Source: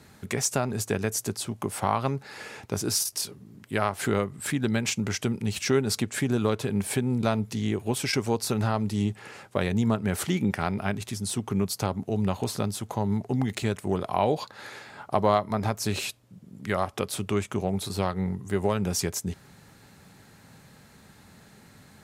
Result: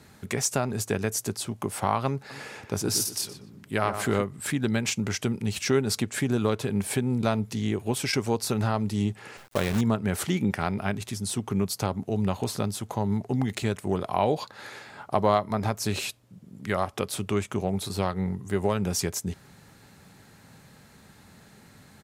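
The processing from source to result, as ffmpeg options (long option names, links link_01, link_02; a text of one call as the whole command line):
ffmpeg -i in.wav -filter_complex "[0:a]asplit=3[link_01][link_02][link_03];[link_01]afade=type=out:start_time=2.29:duration=0.02[link_04];[link_02]asplit=2[link_05][link_06];[link_06]adelay=121,lowpass=frequency=2400:poles=1,volume=-8dB,asplit=2[link_07][link_08];[link_08]adelay=121,lowpass=frequency=2400:poles=1,volume=0.35,asplit=2[link_09][link_10];[link_10]adelay=121,lowpass=frequency=2400:poles=1,volume=0.35,asplit=2[link_11][link_12];[link_12]adelay=121,lowpass=frequency=2400:poles=1,volume=0.35[link_13];[link_05][link_07][link_09][link_11][link_13]amix=inputs=5:normalize=0,afade=type=in:start_time=2.29:duration=0.02,afade=type=out:start_time=4.21:duration=0.02[link_14];[link_03]afade=type=in:start_time=4.21:duration=0.02[link_15];[link_04][link_14][link_15]amix=inputs=3:normalize=0,asettb=1/sr,asplit=3[link_16][link_17][link_18];[link_16]atrim=end=9.374[link_19];[link_17]atrim=start=9.37:end=9.81,asetpts=PTS-STARTPTS,afade=type=in:duration=0.004:curve=qsin,afade=type=out:start_time=0.436:duration=0.004:curve=qsin,acrusher=bits=6:dc=4:mix=0:aa=0.000001[link_20];[link_18]atrim=start=9.806[link_21];[link_19][link_20]acrossfade=duration=0.004:curve1=hsin:curve2=qsin[link_22];[link_22][link_21]acrossfade=duration=0.004:curve1=qsin:curve2=hsin" out.wav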